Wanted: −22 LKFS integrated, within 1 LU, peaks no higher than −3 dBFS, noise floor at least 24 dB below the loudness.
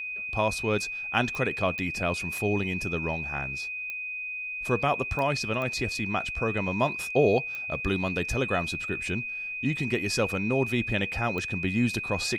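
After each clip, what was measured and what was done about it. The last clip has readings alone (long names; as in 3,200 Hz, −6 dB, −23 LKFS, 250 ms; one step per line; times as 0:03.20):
number of clicks 7; interfering tone 2,500 Hz; level of the tone −32 dBFS; integrated loudness −28.0 LKFS; sample peak −8.0 dBFS; target loudness −22.0 LKFS
→ click removal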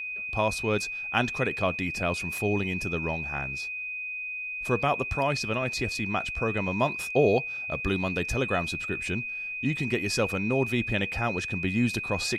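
number of clicks 0; interfering tone 2,500 Hz; level of the tone −32 dBFS
→ notch filter 2,500 Hz, Q 30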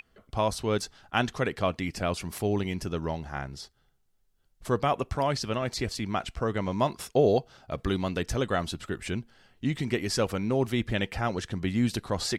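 interfering tone none found; integrated loudness −29.5 LKFS; sample peak −9.0 dBFS; target loudness −22.0 LKFS
→ level +7.5 dB
brickwall limiter −3 dBFS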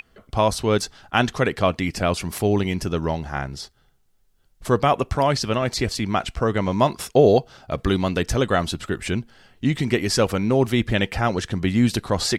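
integrated loudness −22.0 LKFS; sample peak −3.0 dBFS; background noise floor −61 dBFS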